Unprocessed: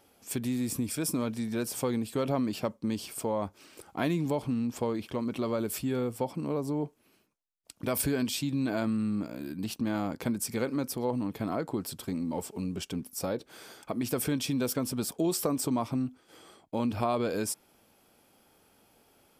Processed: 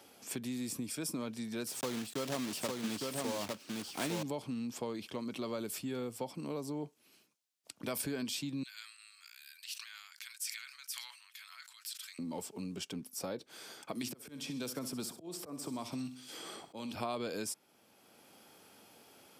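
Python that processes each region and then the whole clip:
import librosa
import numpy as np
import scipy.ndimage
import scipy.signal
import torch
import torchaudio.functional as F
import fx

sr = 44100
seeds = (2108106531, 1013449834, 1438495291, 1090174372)

y = fx.chain(x, sr, fx.block_float(bits=3),
    fx.echo_single(ms=857, db=-3.0), at=(1.67, 4.23))
y = fx.chain(y, sr, fx.bessel_highpass(hz=2700.0, order=6),
    fx.sustainer(db_per_s=86.0), at=(8.63, 12.19))
y = fx.chain(y, sr, fx.echo_feedback(ms=63, feedback_pct=41, wet_db=-14.0),
    fx.auto_swell(attack_ms=595.0),
    fx.band_squash(depth_pct=70), at=(13.95, 16.95))
y = scipy.signal.sosfilt(scipy.signal.butter(2, 130.0, 'highpass', fs=sr, output='sos'), y)
y = fx.peak_eq(y, sr, hz=5000.0, db=5.5, octaves=2.3)
y = fx.band_squash(y, sr, depth_pct=40)
y = y * 10.0 ** (-8.0 / 20.0)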